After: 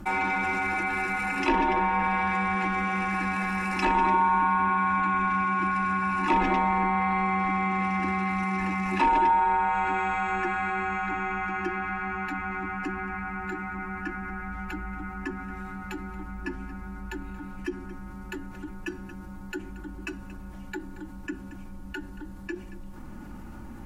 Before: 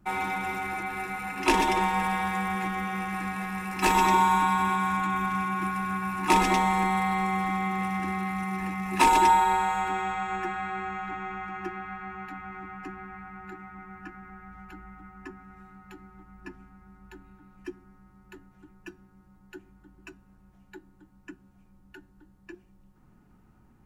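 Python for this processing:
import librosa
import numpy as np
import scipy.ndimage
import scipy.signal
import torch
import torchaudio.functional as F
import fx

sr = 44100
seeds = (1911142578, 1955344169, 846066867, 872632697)

y = fx.env_lowpass_down(x, sr, base_hz=2200.0, full_db=-21.5)
y = y + 0.48 * np.pad(y, (int(3.5 * sr / 1000.0), 0))[:len(y)]
y = y + 10.0 ** (-23.5 / 20.0) * np.pad(y, (int(229 * sr / 1000.0), 0))[:len(y)]
y = fx.env_flatten(y, sr, amount_pct=50)
y = y * 10.0 ** (-4.0 / 20.0)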